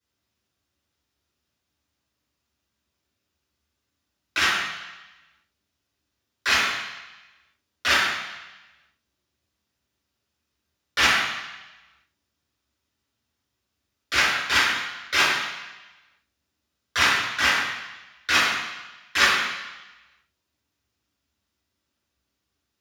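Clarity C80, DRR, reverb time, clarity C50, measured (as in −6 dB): 3.5 dB, −13.0 dB, 1.0 s, 1.0 dB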